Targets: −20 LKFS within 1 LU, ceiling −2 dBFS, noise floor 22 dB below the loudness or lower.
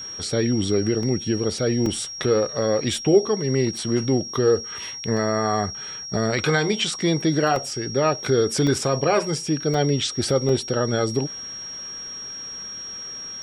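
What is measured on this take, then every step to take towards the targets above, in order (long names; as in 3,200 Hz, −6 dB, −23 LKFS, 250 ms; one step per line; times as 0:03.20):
number of dropouts 8; longest dropout 2.4 ms; interfering tone 5,600 Hz; level of the tone −32 dBFS; integrated loudness −23.0 LKFS; sample peak −5.5 dBFS; target loudness −20.0 LKFS
→ repair the gap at 0:01.03/0:01.86/0:03.77/0:05.17/0:07.56/0:08.67/0:09.74/0:10.49, 2.4 ms
notch filter 5,600 Hz, Q 30
level +3 dB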